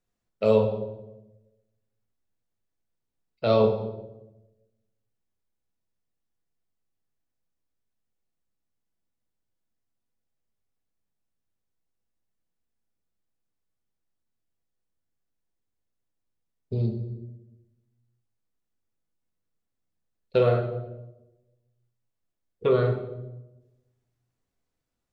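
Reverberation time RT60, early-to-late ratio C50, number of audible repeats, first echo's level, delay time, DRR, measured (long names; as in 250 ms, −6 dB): 1.0 s, 7.5 dB, no echo audible, no echo audible, no echo audible, 2.5 dB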